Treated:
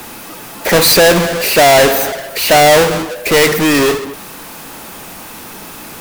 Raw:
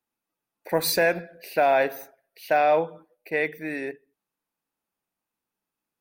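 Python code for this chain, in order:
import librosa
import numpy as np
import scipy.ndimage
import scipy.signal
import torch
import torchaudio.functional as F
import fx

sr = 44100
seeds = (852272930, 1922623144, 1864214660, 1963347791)

y = fx.halfwave_hold(x, sr)
y = fx.power_curve(y, sr, exponent=0.35)
y = y * 10.0 ** (5.5 / 20.0)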